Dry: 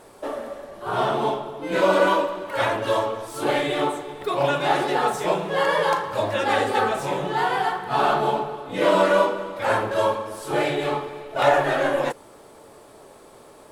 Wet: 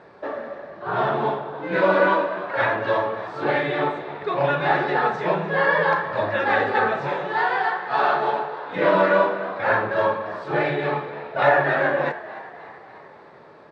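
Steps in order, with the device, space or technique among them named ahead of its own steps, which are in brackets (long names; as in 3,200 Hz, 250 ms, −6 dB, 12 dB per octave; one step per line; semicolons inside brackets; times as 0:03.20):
high-pass filter 41 Hz
0:07.09–0:08.76: bass and treble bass −14 dB, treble +6 dB
frequency-shifting delay pedal into a guitar cabinet (echo with shifted repeats 297 ms, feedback 58%, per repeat +73 Hz, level −16.5 dB; loudspeaker in its box 87–3,900 Hz, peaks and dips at 160 Hz +6 dB, 270 Hz −3 dB, 1,700 Hz +7 dB, 3,100 Hz −8 dB)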